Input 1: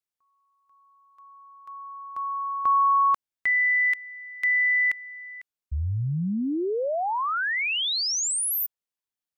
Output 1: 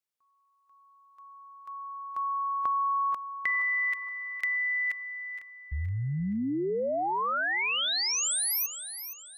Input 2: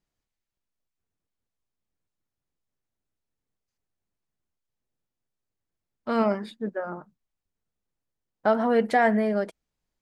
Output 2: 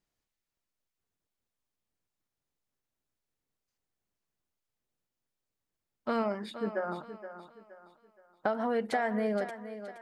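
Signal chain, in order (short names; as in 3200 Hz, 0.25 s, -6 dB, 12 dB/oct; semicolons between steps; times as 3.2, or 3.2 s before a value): low shelf 210 Hz -4.5 dB; compressor 6:1, threshold -27 dBFS; on a send: thinning echo 0.471 s, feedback 38%, high-pass 190 Hz, level -11 dB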